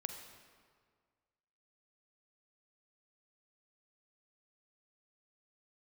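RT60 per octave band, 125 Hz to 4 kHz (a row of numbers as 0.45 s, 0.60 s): 1.9 s, 1.8 s, 1.8 s, 1.8 s, 1.5 s, 1.3 s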